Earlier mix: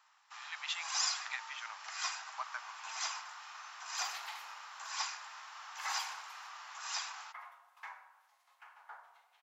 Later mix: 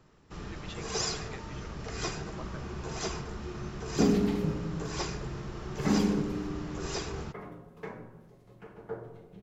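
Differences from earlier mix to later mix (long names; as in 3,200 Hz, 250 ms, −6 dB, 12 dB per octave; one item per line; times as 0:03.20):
speech −9.0 dB
master: remove Butterworth high-pass 820 Hz 48 dB per octave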